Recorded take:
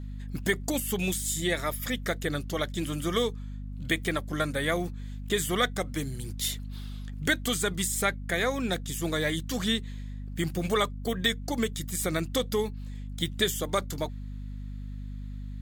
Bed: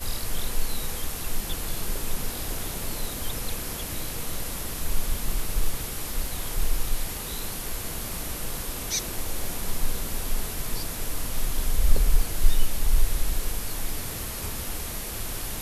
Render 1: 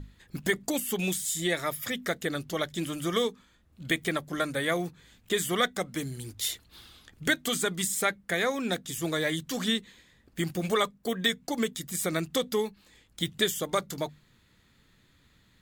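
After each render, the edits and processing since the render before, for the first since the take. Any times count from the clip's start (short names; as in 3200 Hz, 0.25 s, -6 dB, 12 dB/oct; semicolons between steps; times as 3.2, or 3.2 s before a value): notches 50/100/150/200/250 Hz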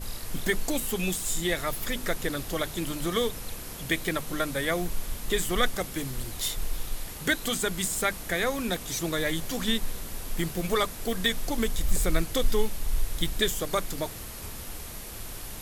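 add bed -6.5 dB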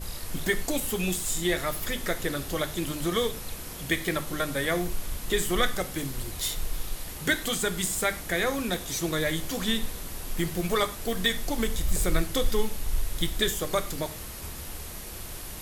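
non-linear reverb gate 0.14 s falling, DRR 9 dB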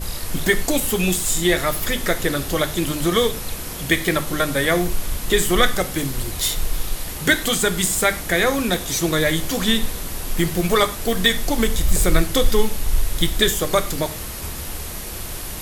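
gain +8.5 dB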